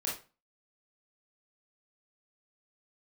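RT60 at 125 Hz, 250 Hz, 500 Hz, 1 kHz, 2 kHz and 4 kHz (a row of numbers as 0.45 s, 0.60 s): 0.40 s, 0.40 s, 0.30 s, 0.35 s, 0.30 s, 0.25 s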